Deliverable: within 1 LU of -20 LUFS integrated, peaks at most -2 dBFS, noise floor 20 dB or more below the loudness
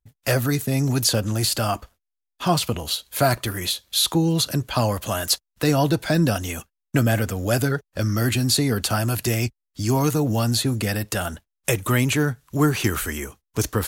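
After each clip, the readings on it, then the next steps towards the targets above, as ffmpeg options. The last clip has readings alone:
loudness -22.5 LUFS; peak level -7.0 dBFS; loudness target -20.0 LUFS
-> -af "volume=1.33"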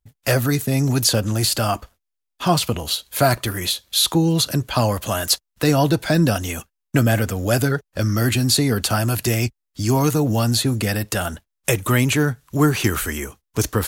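loudness -20.0 LUFS; peak level -4.5 dBFS; noise floor -79 dBFS

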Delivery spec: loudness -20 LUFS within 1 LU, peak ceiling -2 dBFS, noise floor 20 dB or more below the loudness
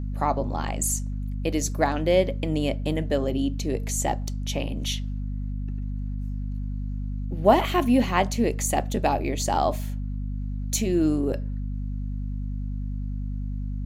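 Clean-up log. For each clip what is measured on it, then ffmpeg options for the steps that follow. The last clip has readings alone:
hum 50 Hz; highest harmonic 250 Hz; hum level -27 dBFS; loudness -26.5 LUFS; peak level -4.5 dBFS; loudness target -20.0 LUFS
-> -af "bandreject=f=50:t=h:w=4,bandreject=f=100:t=h:w=4,bandreject=f=150:t=h:w=4,bandreject=f=200:t=h:w=4,bandreject=f=250:t=h:w=4"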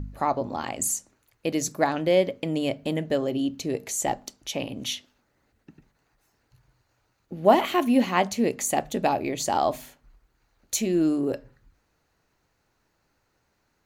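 hum not found; loudness -26.0 LUFS; peak level -5.0 dBFS; loudness target -20.0 LUFS
-> -af "volume=2,alimiter=limit=0.794:level=0:latency=1"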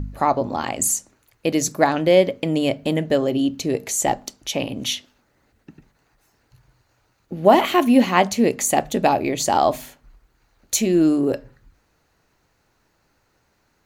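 loudness -20.0 LUFS; peak level -2.0 dBFS; noise floor -66 dBFS

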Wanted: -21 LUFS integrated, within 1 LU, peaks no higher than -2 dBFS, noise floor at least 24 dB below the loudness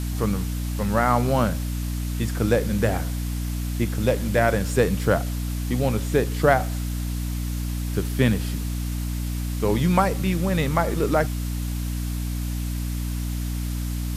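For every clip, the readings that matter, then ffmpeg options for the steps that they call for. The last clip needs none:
hum 60 Hz; highest harmonic 300 Hz; hum level -24 dBFS; noise floor -27 dBFS; noise floor target -49 dBFS; loudness -24.5 LUFS; peak level -3.5 dBFS; loudness target -21.0 LUFS
-> -af "bandreject=f=60:t=h:w=4,bandreject=f=120:t=h:w=4,bandreject=f=180:t=h:w=4,bandreject=f=240:t=h:w=4,bandreject=f=300:t=h:w=4"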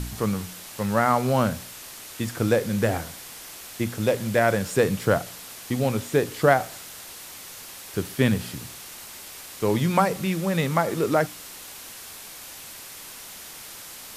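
hum not found; noise floor -41 dBFS; noise floor target -49 dBFS
-> -af "afftdn=nr=8:nf=-41"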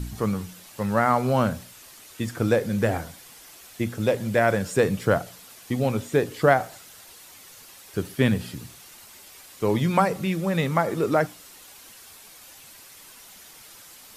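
noise floor -48 dBFS; noise floor target -49 dBFS
-> -af "afftdn=nr=6:nf=-48"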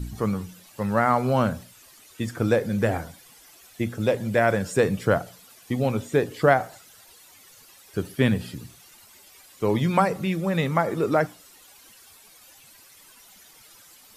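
noise floor -52 dBFS; loudness -24.5 LUFS; peak level -4.5 dBFS; loudness target -21.0 LUFS
-> -af "volume=1.5,alimiter=limit=0.794:level=0:latency=1"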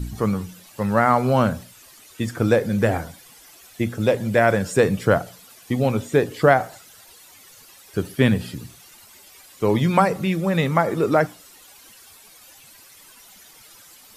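loudness -21.0 LUFS; peak level -2.0 dBFS; noise floor -49 dBFS

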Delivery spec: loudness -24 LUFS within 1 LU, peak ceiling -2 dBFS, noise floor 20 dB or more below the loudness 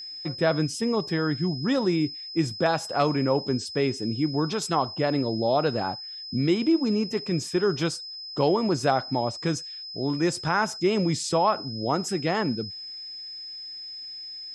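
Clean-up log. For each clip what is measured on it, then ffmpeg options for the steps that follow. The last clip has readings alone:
steady tone 5.1 kHz; tone level -36 dBFS; loudness -26.5 LUFS; peak level -9.0 dBFS; loudness target -24.0 LUFS
-> -af "bandreject=f=5100:w=30"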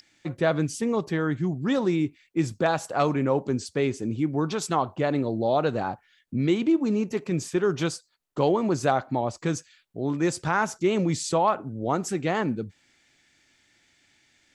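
steady tone not found; loudness -26.0 LUFS; peak level -8.5 dBFS; loudness target -24.0 LUFS
-> -af "volume=1.26"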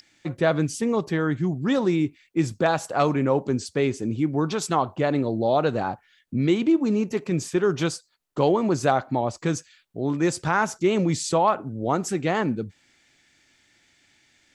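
loudness -24.0 LUFS; peak level -6.5 dBFS; noise floor -64 dBFS

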